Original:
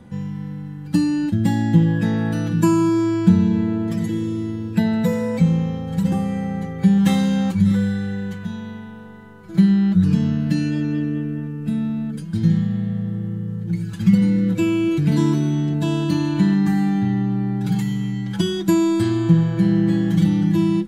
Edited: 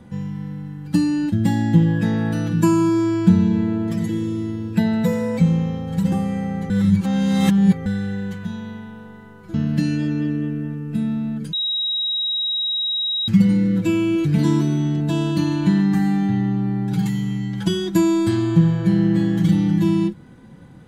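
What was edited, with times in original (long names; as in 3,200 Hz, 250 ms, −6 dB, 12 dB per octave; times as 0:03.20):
0:06.70–0:07.86: reverse
0:09.54–0:10.27: remove
0:12.26–0:14.01: beep over 3,820 Hz −19.5 dBFS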